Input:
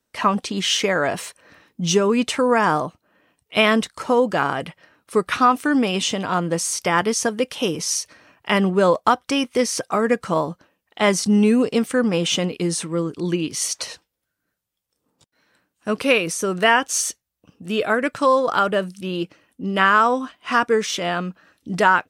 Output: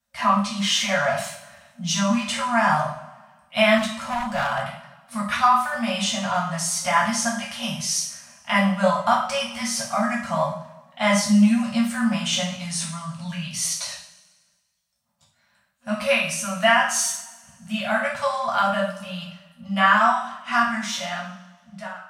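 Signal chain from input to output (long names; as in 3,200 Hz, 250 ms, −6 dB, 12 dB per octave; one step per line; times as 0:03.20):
fade-out on the ending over 1.46 s
coupled-rooms reverb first 0.52 s, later 1.6 s, from −18 dB, DRR −5 dB
0:03.78–0:04.63: hard clipping −12.5 dBFS, distortion −23 dB
brick-wall band-stop 240–540 Hz
level −6.5 dB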